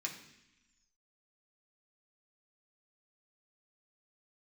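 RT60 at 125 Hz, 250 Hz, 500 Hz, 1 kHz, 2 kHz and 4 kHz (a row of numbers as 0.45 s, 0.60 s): 1.1 s, 1.3 s, 0.80 s, 0.90 s, 1.2 s, 1.4 s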